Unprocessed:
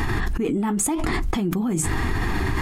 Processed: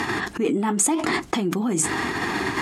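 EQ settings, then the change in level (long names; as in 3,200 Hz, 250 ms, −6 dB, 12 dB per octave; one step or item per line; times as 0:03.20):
band-pass filter 240–7,900 Hz
high-shelf EQ 6,200 Hz +6.5 dB
+3.0 dB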